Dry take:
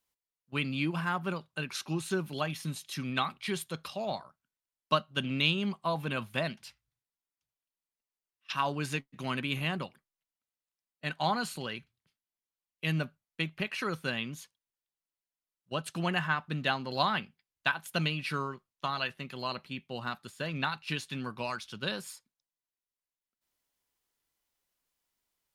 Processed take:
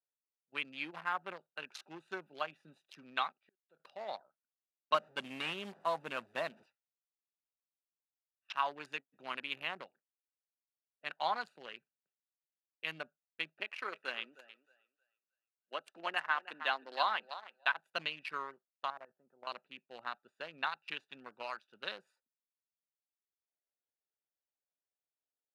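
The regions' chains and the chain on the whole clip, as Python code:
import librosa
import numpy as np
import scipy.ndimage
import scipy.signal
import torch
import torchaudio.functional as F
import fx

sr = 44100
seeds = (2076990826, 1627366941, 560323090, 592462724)

y = fx.chain(x, sr, fx.low_shelf(hz=110.0, db=-8.0),
    fx.level_steps(step_db=17),
    fx.gate_flip(shuts_db=-32.0, range_db=-37), at=(3.32, 3.8))
y = fx.chain(y, sr, fx.delta_mod(bps=64000, step_db=-41.5),
    fx.low_shelf(hz=440.0, db=7.5), at=(4.94, 6.66))
y = fx.chain(y, sr, fx.highpass(hz=220.0, slope=24),
    fx.echo_thinned(ms=312, feedback_pct=30, hz=630.0, wet_db=-8.5), at=(13.6, 17.71))
y = fx.chain(y, sr, fx.lowpass(hz=1300.0, slope=24),
    fx.level_steps(step_db=13), at=(18.9, 19.47))
y = fx.wiener(y, sr, points=41)
y = scipy.signal.sosfilt(scipy.signal.butter(2, 760.0, 'highpass', fs=sr, output='sos'), y)
y = fx.high_shelf(y, sr, hz=4200.0, db=-11.0)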